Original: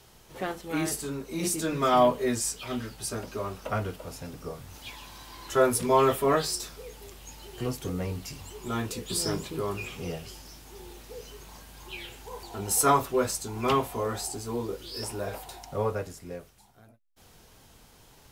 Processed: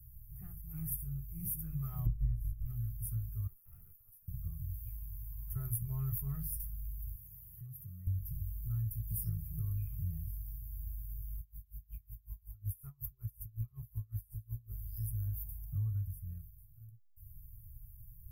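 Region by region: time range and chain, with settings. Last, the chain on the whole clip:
0:02.05–0:02.65: ceiling on every frequency bin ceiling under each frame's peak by 22 dB + RIAA equalisation playback
0:03.47–0:04.28: Butterworth high-pass 220 Hz 72 dB per octave + noise gate −40 dBFS, range −8 dB + tube saturation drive 42 dB, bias 0.25
0:07.15–0:08.07: high-pass filter 140 Hz + parametric band 1,900 Hz +4.5 dB 0.21 octaves + downward compressor 3 to 1, threshold −42 dBFS
0:11.39–0:14.72: downward compressor, threshold −27 dBFS + tremolo with a sine in dB 5.4 Hz, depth 30 dB
whole clip: inverse Chebyshev band-stop filter 240–7,900 Hz, stop band 40 dB; comb filter 1.6 ms, depth 31%; downward compressor 4 to 1, threshold −39 dBFS; level +6.5 dB

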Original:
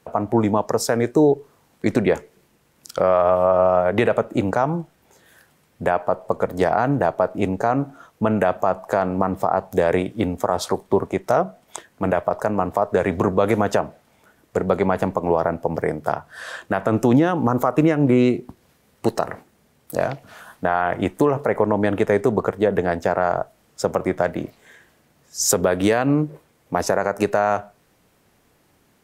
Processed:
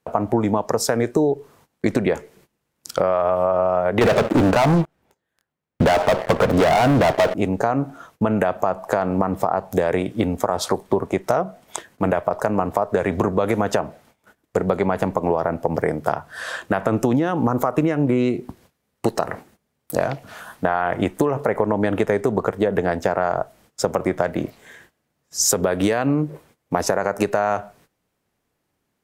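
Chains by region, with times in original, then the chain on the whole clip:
0:04.01–0:07.34: high-shelf EQ 3,900 Hz −10.5 dB + leveller curve on the samples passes 5
whole clip: noise gate −53 dBFS, range −18 dB; downward compressor, threshold −19 dBFS; level +4 dB

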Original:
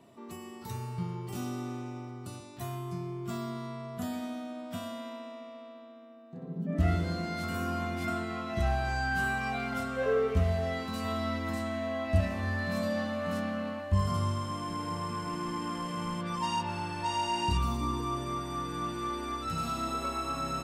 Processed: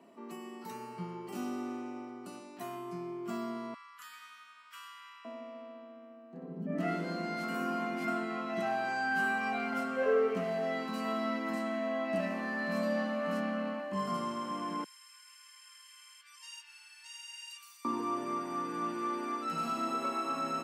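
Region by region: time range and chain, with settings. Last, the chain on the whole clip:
0:03.74–0:05.25: elliptic high-pass filter 1,100 Hz + upward compression, threshold −56 dBFS
0:14.84–0:17.85: high-pass filter 1,500 Hz 24 dB per octave + first difference
whole clip: Butterworth high-pass 190 Hz 36 dB per octave; bass and treble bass 0 dB, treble −6 dB; notch filter 3,600 Hz, Q 7.2

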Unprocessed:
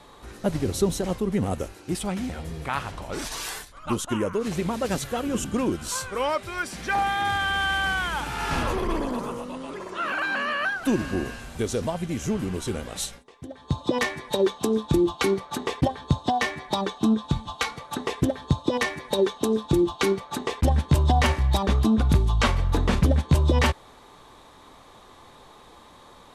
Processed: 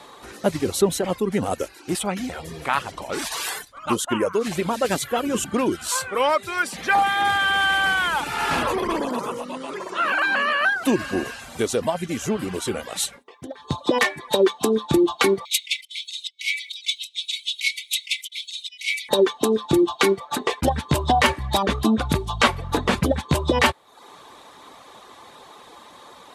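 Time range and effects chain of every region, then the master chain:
0:15.45–0:19.09: drawn EQ curve 120 Hz 0 dB, 280 Hz −4 dB, 440 Hz +12 dB, 2,400 Hz +7 dB + compressor whose output falls as the input rises −22 dBFS, ratio −0.5 + linear-phase brick-wall high-pass 2,000 Hz
whole clip: reverb reduction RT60 0.53 s; high-pass filter 340 Hz 6 dB per octave; dynamic equaliser 5,800 Hz, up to −4 dB, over −48 dBFS, Q 2.5; level +7 dB

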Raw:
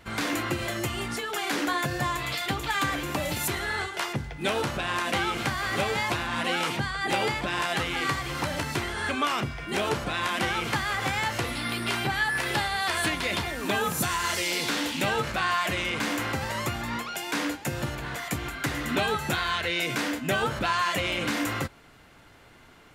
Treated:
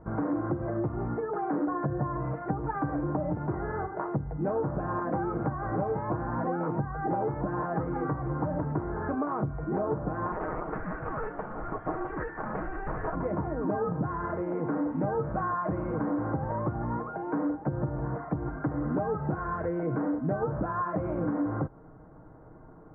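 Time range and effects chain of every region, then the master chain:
0:10.32–0:13.15: voice inversion scrambler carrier 3,500 Hz + highs frequency-modulated by the lows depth 0.44 ms
whole clip: Bessel low-pass filter 720 Hz, order 8; comb filter 6.4 ms, depth 42%; downward compressor 4 to 1, threshold −32 dBFS; level +5.5 dB

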